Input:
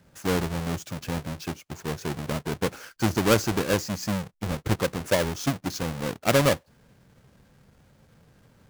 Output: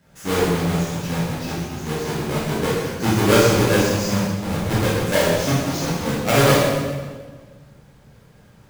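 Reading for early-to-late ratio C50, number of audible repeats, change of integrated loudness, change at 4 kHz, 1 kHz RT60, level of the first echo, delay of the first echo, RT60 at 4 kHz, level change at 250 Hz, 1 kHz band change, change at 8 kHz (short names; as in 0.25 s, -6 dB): -1.5 dB, none, +7.0 dB, +7.0 dB, 1.4 s, none, none, 1.2 s, +7.0 dB, +7.5 dB, +7.0 dB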